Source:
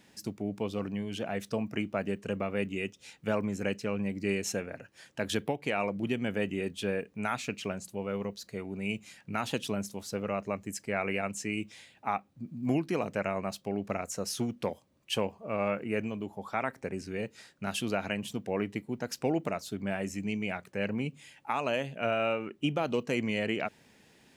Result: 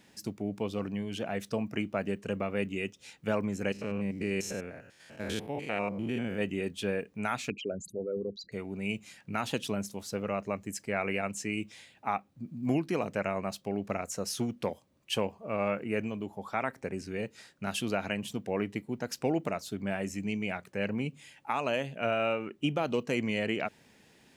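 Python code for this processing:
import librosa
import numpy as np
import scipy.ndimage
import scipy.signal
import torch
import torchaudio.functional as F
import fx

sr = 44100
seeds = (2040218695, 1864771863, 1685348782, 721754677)

y = fx.spec_steps(x, sr, hold_ms=100, at=(3.72, 6.41))
y = fx.envelope_sharpen(y, sr, power=3.0, at=(7.5, 8.52))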